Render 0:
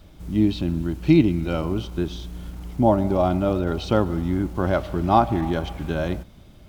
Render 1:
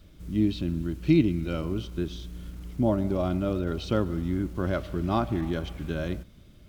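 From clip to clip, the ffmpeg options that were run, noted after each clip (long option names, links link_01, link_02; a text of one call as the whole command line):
ffmpeg -i in.wav -af "equalizer=frequency=820:width=2.3:gain=-10.5,volume=-4.5dB" out.wav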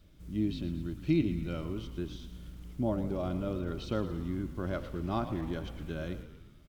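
ffmpeg -i in.wav -filter_complex "[0:a]asplit=8[link_01][link_02][link_03][link_04][link_05][link_06][link_07][link_08];[link_02]adelay=113,afreqshift=-54,volume=-12dB[link_09];[link_03]adelay=226,afreqshift=-108,volume=-16.3dB[link_10];[link_04]adelay=339,afreqshift=-162,volume=-20.6dB[link_11];[link_05]adelay=452,afreqshift=-216,volume=-24.9dB[link_12];[link_06]adelay=565,afreqshift=-270,volume=-29.2dB[link_13];[link_07]adelay=678,afreqshift=-324,volume=-33.5dB[link_14];[link_08]adelay=791,afreqshift=-378,volume=-37.8dB[link_15];[link_01][link_09][link_10][link_11][link_12][link_13][link_14][link_15]amix=inputs=8:normalize=0,volume=-7dB" out.wav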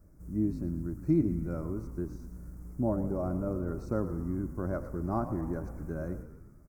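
ffmpeg -i in.wav -af "asuperstop=centerf=3200:order=4:qfactor=0.56,volume=1.5dB" out.wav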